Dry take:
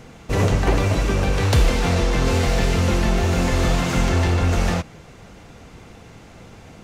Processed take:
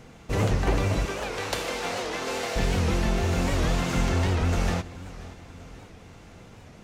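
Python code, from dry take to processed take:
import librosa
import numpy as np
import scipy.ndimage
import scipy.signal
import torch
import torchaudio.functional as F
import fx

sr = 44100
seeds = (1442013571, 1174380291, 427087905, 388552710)

y = fx.highpass(x, sr, hz=400.0, slope=12, at=(1.05, 2.56))
y = fx.echo_feedback(y, sr, ms=535, feedback_pct=52, wet_db=-18)
y = fx.record_warp(y, sr, rpm=78.0, depth_cents=160.0)
y = y * 10.0 ** (-5.5 / 20.0)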